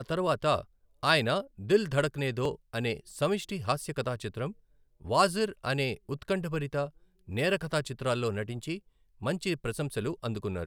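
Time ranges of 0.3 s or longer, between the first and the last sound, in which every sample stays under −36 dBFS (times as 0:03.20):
0:00.61–0:01.03
0:04.51–0:05.05
0:06.87–0:07.29
0:08.77–0:09.22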